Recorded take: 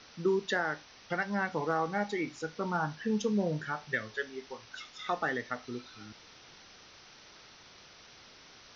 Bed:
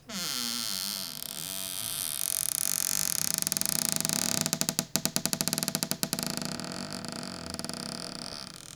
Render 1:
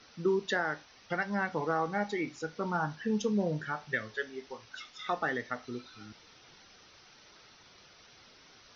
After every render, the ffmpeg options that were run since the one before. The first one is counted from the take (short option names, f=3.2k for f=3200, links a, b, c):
-af "afftdn=nr=6:nf=-56"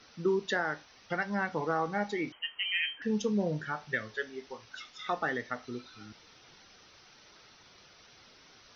-filter_complex "[0:a]asettb=1/sr,asplit=3[a][b][c];[a]atrim=end=2.324[d];[b]atrim=start=2.32:end=3.02,asetpts=PTS-STARTPTS,afade=t=in:d=0.004:c=qsin,afade=t=out:st=0.696:d=0.004:c=qsin,lowpass=f=2.8k:t=q:w=0.5098,lowpass=f=2.8k:t=q:w=0.6013,lowpass=f=2.8k:t=q:w=0.9,lowpass=f=2.8k:t=q:w=2.563,afreqshift=-3300[e];[c]atrim=start=3.016[f];[d][e]acrossfade=d=0.004:c1=hsin:c2=qsin[g];[g][f]acrossfade=d=0.004:c1=qsin:c2=hsin"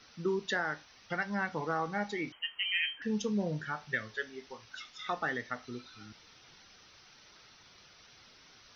-af "equalizer=f=460:t=o:w=2.2:g=-4"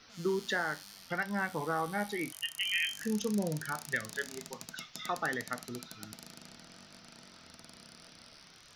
-filter_complex "[1:a]volume=-19dB[a];[0:a][a]amix=inputs=2:normalize=0"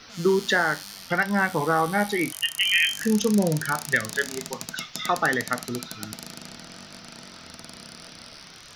-af "volume=11dB"